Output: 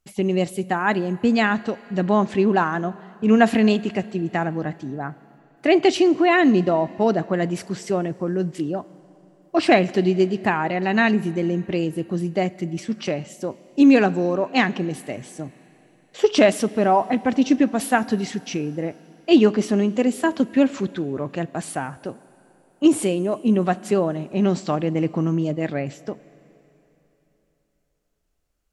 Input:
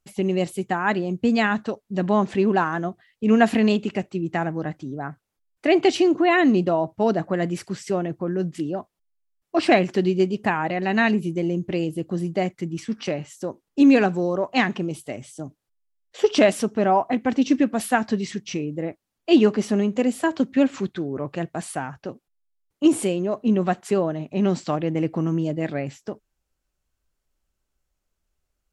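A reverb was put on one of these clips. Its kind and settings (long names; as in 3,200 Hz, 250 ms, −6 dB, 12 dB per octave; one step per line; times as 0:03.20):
four-comb reverb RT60 3.5 s, combs from 33 ms, DRR 19.5 dB
level +1.5 dB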